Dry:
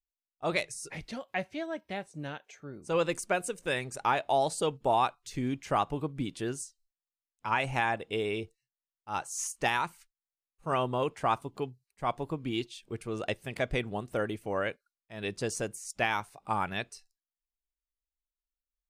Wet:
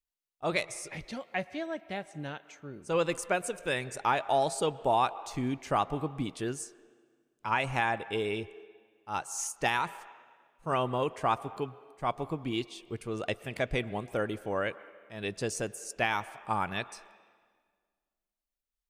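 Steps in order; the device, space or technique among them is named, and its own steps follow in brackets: filtered reverb send (on a send: HPF 420 Hz 12 dB/oct + LPF 3000 Hz 12 dB/oct + reverb RT60 1.8 s, pre-delay 0.107 s, DRR 17 dB)

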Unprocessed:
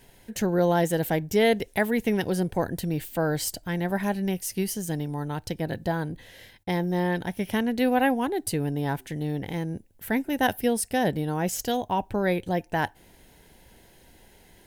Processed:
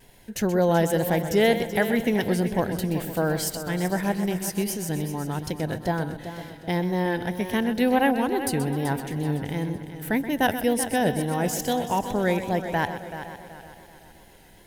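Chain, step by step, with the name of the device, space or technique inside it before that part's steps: multi-head tape echo (multi-head echo 0.127 s, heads first and third, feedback 57%, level -12 dB; wow and flutter); gain +1 dB

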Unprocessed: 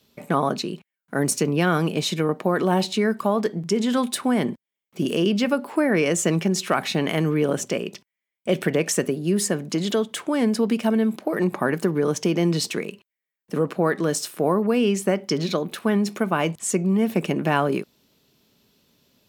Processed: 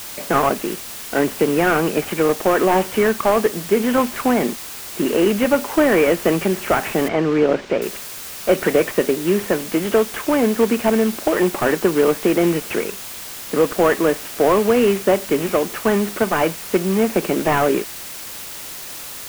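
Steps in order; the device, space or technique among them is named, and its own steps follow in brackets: army field radio (BPF 300–2900 Hz; CVSD 16 kbps; white noise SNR 14 dB); 7.08–7.82 air absorption 150 m; gain +8.5 dB

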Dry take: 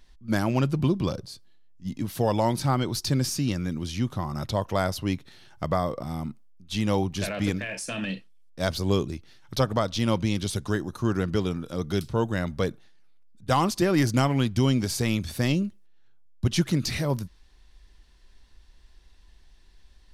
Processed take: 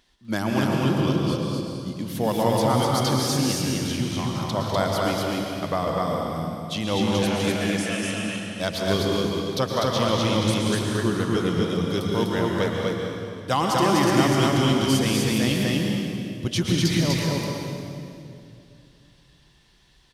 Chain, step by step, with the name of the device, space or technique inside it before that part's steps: stadium PA (HPF 170 Hz 6 dB/oct; bell 3200 Hz +4 dB 0.33 oct; loudspeakers at several distances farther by 68 m -11 dB, 85 m -2 dB; reverb RT60 2.5 s, pre-delay 0.105 s, DRR 0.5 dB)

